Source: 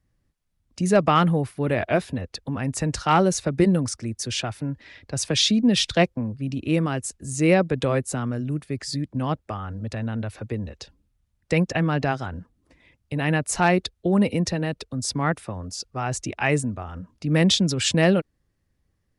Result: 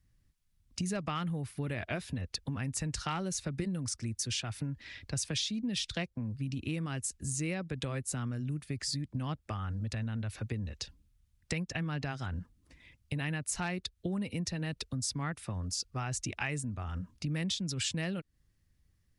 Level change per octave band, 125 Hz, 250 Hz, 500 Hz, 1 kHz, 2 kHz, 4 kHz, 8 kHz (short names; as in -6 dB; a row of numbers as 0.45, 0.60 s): -9.5, -13.5, -19.0, -16.5, -12.0, -10.5, -7.0 dB